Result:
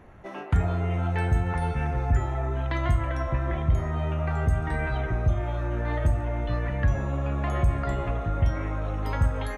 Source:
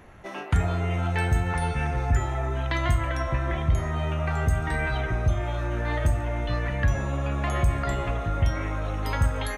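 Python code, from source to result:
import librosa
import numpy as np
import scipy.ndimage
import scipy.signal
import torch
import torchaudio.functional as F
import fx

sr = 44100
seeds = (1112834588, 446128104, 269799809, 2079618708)

y = fx.high_shelf(x, sr, hz=2100.0, db=-10.0)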